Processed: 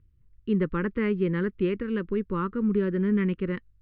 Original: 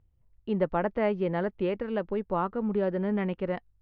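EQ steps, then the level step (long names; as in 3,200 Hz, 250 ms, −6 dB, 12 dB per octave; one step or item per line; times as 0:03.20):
Butterworth band-reject 710 Hz, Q 0.88
high-frequency loss of the air 230 metres
+5.5 dB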